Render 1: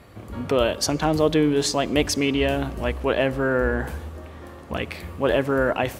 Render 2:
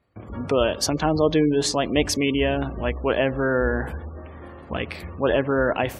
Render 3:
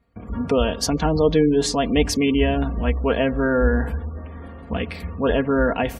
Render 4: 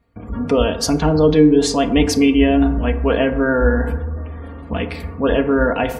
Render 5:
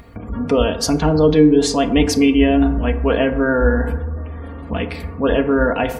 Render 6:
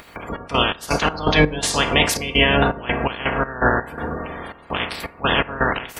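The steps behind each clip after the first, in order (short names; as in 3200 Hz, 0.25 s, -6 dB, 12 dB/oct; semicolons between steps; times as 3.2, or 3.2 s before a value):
gate with hold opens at -37 dBFS; spectral gate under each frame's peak -30 dB strong
low shelf 180 Hz +10 dB; comb 4.3 ms, depth 60%; gain -1.5 dB
FDN reverb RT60 1 s, low-frequency decay 0.85×, high-frequency decay 0.35×, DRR 7.5 dB; gain +2.5 dB
upward compressor, threshold -26 dBFS
spectral limiter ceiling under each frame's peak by 27 dB; step gate "xx.x.x.x.xxx." 83 bpm -12 dB; gain -2 dB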